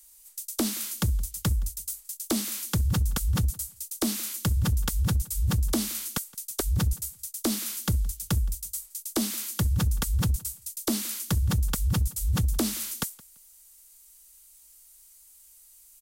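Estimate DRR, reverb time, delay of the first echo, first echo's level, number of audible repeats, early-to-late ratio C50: no reverb, no reverb, 169 ms, -23.5 dB, 1, no reverb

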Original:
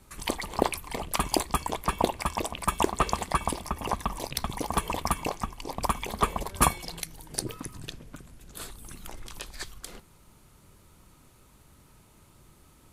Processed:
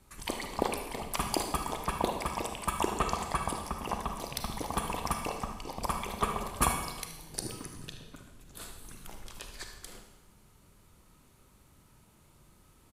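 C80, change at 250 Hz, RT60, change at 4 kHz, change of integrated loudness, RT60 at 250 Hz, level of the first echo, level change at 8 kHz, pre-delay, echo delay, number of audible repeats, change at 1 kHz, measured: 8.0 dB, -4.0 dB, 1.1 s, -4.0 dB, -4.0 dB, 1.1 s, -12.5 dB, -4.0 dB, 34 ms, 76 ms, 1, -4.0 dB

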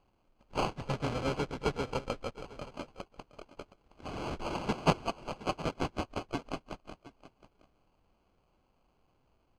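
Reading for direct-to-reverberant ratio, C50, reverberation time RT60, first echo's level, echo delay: no reverb, no reverb, no reverb, -17.0 dB, 718 ms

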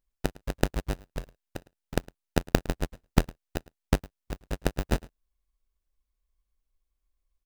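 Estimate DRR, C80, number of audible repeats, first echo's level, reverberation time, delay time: no reverb, no reverb, 1, -22.5 dB, no reverb, 108 ms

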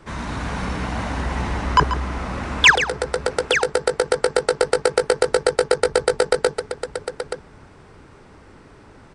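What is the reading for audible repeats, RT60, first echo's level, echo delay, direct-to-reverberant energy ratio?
2, no reverb, -11.0 dB, 138 ms, no reverb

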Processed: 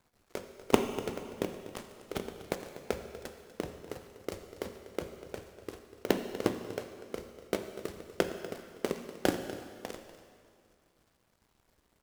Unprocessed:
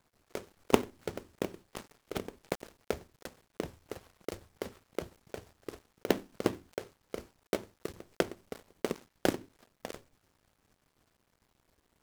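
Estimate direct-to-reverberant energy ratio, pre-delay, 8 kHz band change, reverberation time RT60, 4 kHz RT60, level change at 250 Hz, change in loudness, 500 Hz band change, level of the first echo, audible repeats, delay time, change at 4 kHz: 6.5 dB, 5 ms, +1.0 dB, 2.2 s, 2.0 s, +1.0 dB, +0.5 dB, +1.0 dB, -15.5 dB, 1, 244 ms, +1.0 dB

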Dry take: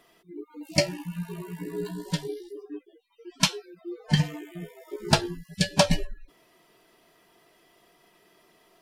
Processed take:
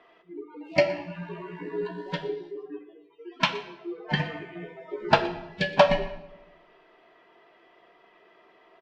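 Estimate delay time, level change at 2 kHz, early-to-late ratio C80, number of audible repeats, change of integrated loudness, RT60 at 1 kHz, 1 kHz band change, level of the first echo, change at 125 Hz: 120 ms, +3.5 dB, 13.5 dB, 1, 0.0 dB, 0.95 s, +5.5 dB, -20.0 dB, -6.5 dB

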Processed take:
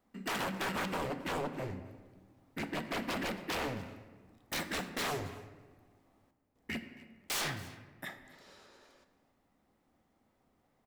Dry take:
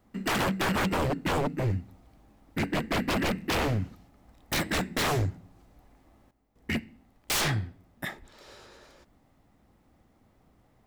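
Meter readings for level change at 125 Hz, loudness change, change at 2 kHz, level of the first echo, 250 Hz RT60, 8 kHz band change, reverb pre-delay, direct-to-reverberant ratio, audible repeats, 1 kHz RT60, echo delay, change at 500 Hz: -14.0 dB, -8.5 dB, -7.0 dB, -20.5 dB, 2.2 s, -7.5 dB, 3 ms, 8.5 dB, 1, 1.3 s, 270 ms, -8.0 dB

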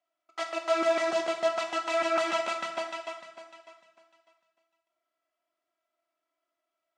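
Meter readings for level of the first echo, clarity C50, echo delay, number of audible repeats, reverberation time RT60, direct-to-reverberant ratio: no echo, 8.5 dB, no echo, no echo, 0.80 s, 5.0 dB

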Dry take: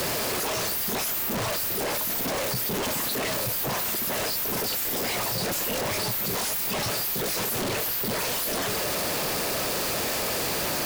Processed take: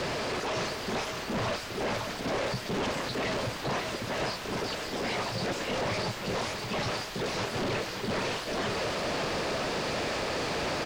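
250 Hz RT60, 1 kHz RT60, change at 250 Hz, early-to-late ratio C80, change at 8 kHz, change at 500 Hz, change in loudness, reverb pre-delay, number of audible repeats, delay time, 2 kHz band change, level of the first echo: no reverb, no reverb, -1.0 dB, no reverb, -13.0 dB, -1.0 dB, -6.0 dB, no reverb, 1, 560 ms, -2.0 dB, -6.0 dB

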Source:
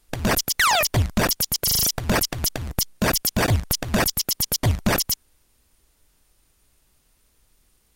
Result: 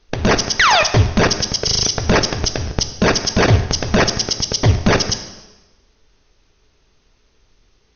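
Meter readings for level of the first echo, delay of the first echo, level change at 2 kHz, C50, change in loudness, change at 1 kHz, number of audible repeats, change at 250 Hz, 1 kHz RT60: no echo, no echo, +6.5 dB, 11.0 dB, +5.5 dB, +6.5 dB, no echo, +6.5 dB, 1.1 s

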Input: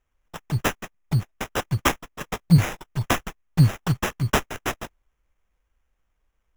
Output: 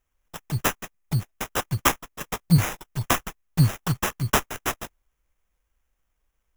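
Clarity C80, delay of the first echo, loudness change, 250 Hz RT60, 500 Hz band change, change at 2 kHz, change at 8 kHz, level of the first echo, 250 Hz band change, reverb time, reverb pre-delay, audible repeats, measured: no reverb, no echo, -1.0 dB, no reverb, -2.0 dB, -0.5 dB, +4.0 dB, no echo, -2.5 dB, no reverb, no reverb, no echo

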